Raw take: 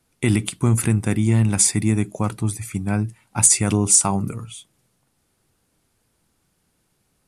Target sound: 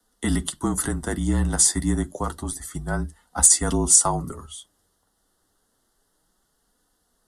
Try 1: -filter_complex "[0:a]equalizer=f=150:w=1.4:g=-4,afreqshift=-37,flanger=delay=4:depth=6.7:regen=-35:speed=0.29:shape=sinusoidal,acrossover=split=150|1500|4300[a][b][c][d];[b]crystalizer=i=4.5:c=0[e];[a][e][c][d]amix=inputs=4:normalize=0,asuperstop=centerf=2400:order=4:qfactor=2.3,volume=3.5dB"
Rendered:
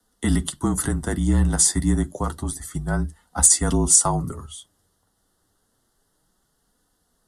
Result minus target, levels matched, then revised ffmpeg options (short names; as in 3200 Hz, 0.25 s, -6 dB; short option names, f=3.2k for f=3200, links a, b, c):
125 Hz band +3.0 dB
-filter_complex "[0:a]equalizer=f=150:w=1.4:g=-11,afreqshift=-37,flanger=delay=4:depth=6.7:regen=-35:speed=0.29:shape=sinusoidal,acrossover=split=150|1500|4300[a][b][c][d];[b]crystalizer=i=4.5:c=0[e];[a][e][c][d]amix=inputs=4:normalize=0,asuperstop=centerf=2400:order=4:qfactor=2.3,volume=3.5dB"